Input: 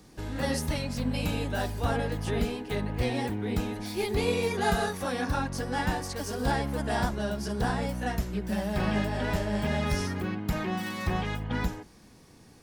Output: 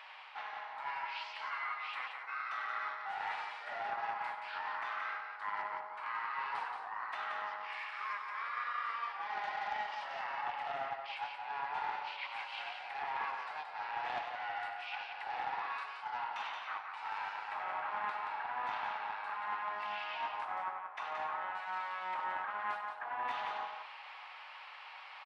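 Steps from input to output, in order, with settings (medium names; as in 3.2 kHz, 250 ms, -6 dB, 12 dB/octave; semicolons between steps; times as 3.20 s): steep high-pass 1.6 kHz 36 dB/octave; reverse; compression 8:1, threshold -52 dBFS, peak gain reduction 20 dB; reverse; distance through air 120 m; doubling 48 ms -11 dB; delay 88 ms -5.5 dB; speed mistake 15 ips tape played at 7.5 ips; loudspeaker Doppler distortion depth 0.23 ms; trim +16 dB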